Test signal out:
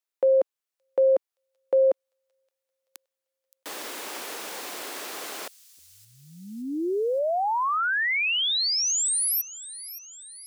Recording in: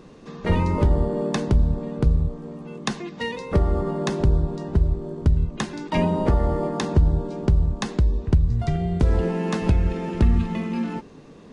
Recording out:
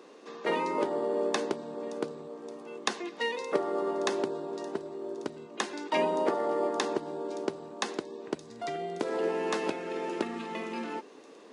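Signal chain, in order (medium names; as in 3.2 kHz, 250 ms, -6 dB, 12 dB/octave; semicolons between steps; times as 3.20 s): high-pass 320 Hz 24 dB/octave; on a send: feedback echo behind a high-pass 571 ms, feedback 58%, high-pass 5.4 kHz, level -14.5 dB; on the sum: trim -2 dB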